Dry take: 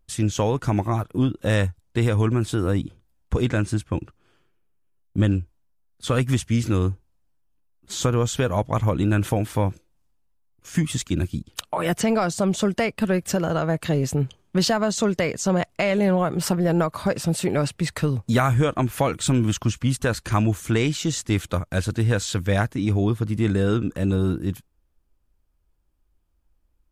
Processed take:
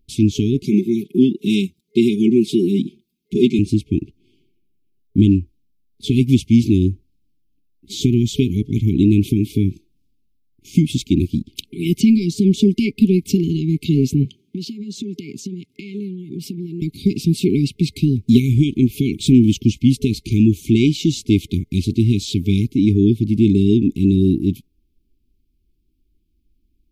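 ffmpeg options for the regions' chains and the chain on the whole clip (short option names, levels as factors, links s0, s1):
-filter_complex "[0:a]asettb=1/sr,asplit=3[s0][s1][s2];[s0]atrim=end=0.634[s3];[s1]atrim=start=0.63:end=3.59,asetpts=PTS-STARTPTS,afade=t=in:d=0.004:c=qsin,afade=t=out:st=2.956:d=0.004:c=qsin,highpass=210,aecho=1:1:5.2:0.91,atrim=end_sample=130536[s4];[s2]atrim=start=3.586[s5];[s3][s4]acrossfade=d=0.004:c1=hsin:c2=qsin[s6];[s6][s5]acrossfade=d=0.004:c1=qsin:c2=hsin,asettb=1/sr,asplit=3[s7][s8][s9];[s7]atrim=end=14.254[s10];[s8]atrim=start=14.25:end=16.82,asetpts=PTS-STARTPTS,afade=t=in:d=0.004:c=qsin,afade=t=out:st=2.566:d=0.004:c=qsin,highpass=f=110:w=0.5412,highpass=f=110:w=1.3066,acompressor=threshold=0.0282:ratio=8:attack=3.2:release=140:knee=1:detection=peak[s11];[s9]atrim=start=16.816[s12];[s10][s11]acrossfade=d=0.004:c1=hsin:c2=qsin[s13];[s13][s12]acrossfade=d=0.004:c1=qsin:c2=hsin,afftfilt=real='re*(1-between(b*sr/4096,430,2100))':imag='im*(1-between(b*sr/4096,430,2100))':win_size=4096:overlap=0.75,equalizer=f=250:t=o:w=1:g=9,equalizer=f=2000:t=o:w=1:g=-4,equalizer=f=4000:t=o:w=1:g=4,equalizer=f=8000:t=o:w=1:g=-8,volume=1.41"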